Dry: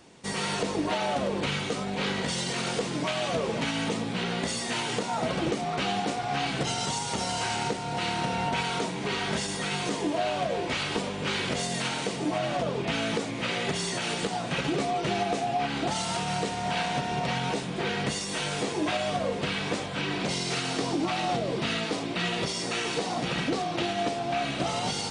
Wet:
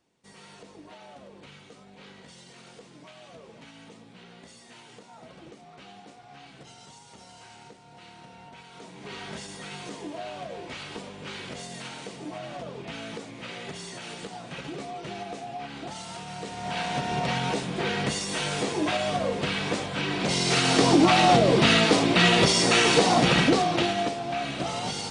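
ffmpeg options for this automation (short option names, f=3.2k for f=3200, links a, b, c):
-af "volume=10dB,afade=t=in:st=8.71:d=0.46:silence=0.298538,afade=t=in:st=16.36:d=0.79:silence=0.298538,afade=t=in:st=20.18:d=0.74:silence=0.375837,afade=t=out:st=23.18:d=0.98:silence=0.266073"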